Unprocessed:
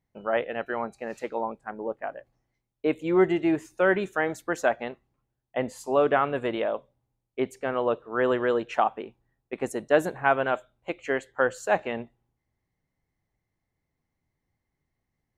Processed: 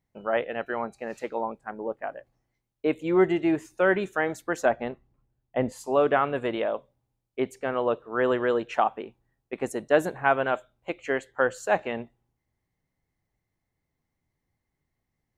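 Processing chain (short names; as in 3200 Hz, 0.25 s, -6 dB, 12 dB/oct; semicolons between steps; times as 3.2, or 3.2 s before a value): 4.65–5.72 tilt -2 dB/oct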